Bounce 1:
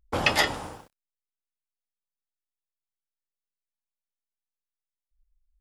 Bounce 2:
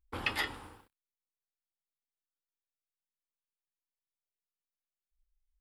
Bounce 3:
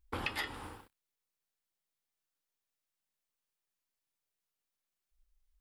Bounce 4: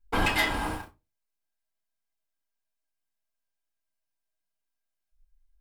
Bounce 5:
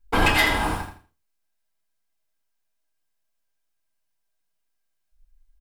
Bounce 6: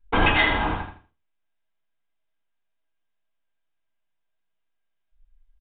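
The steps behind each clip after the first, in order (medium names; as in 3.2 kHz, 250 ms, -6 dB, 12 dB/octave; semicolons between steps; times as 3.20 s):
fifteen-band graphic EQ 160 Hz -9 dB, 630 Hz -12 dB, 6.3 kHz -12 dB; trim -8.5 dB
compression 4:1, threshold -40 dBFS, peak gain reduction 11.5 dB; trim +5 dB
waveshaping leveller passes 3; small resonant body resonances 640/1600/2400 Hz, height 8 dB; reverberation RT60 0.25 s, pre-delay 4 ms, DRR -1 dB; trim -3 dB
feedback delay 82 ms, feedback 24%, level -8 dB; trim +5.5 dB
resampled via 8 kHz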